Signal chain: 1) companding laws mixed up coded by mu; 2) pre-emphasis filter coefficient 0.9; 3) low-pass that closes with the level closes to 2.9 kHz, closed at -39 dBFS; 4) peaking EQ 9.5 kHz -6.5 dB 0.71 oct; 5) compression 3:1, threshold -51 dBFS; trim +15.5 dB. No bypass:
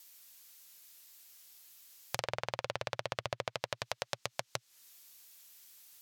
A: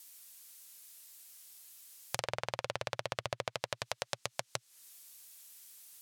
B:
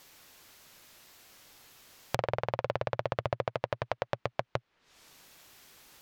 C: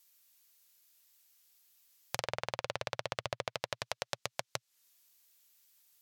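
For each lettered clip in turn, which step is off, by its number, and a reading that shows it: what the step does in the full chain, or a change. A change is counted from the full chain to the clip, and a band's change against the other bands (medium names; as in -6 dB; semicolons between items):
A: 4, 8 kHz band +3.0 dB; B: 2, 8 kHz band -13.0 dB; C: 1, distortion -24 dB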